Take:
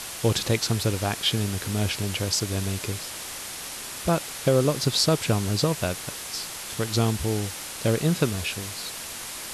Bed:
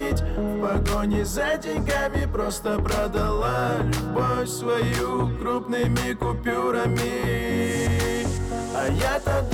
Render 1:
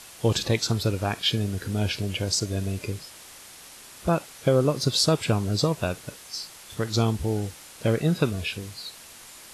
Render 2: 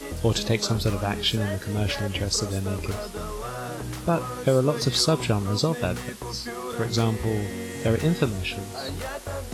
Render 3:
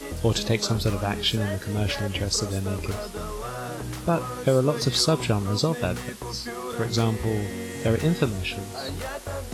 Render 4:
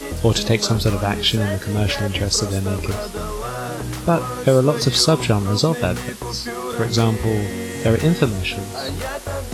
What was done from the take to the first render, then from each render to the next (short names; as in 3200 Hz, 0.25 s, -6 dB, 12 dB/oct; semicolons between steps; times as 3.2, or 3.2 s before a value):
noise print and reduce 10 dB
add bed -10 dB
nothing audible
gain +6 dB